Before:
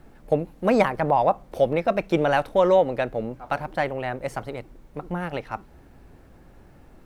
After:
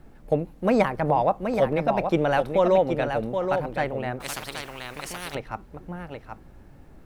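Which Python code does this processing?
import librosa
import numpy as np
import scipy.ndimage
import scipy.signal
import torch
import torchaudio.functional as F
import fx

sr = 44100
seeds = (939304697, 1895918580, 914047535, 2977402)

p1 = fx.low_shelf(x, sr, hz=270.0, db=4.0)
p2 = p1 + fx.echo_single(p1, sr, ms=776, db=-6.5, dry=0)
p3 = fx.spectral_comp(p2, sr, ratio=4.0, at=(4.2, 5.35))
y = p3 * librosa.db_to_amplitude(-2.5)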